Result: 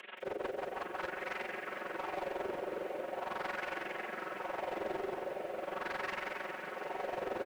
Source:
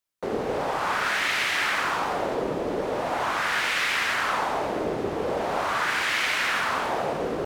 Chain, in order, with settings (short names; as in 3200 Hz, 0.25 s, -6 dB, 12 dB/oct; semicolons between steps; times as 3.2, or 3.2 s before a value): delta modulation 16 kbps, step -40 dBFS; Chebyshev high-pass 470 Hz, order 2; notch 1200 Hz, Q 16; comb 5.4 ms, depth 81%; reverse; upward compressor, threshold -37 dBFS; reverse; limiter -29 dBFS, peak gain reduction 9 dB; rotary speaker horn 6 Hz, later 0.8 Hz, at 0.64; overloaded stage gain 36 dB; AM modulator 22 Hz, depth 80%; split-band echo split 530 Hz, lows 0.127 s, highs 0.744 s, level -11 dB; lo-fi delay 0.172 s, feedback 55%, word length 10-bit, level -9 dB; gain +3.5 dB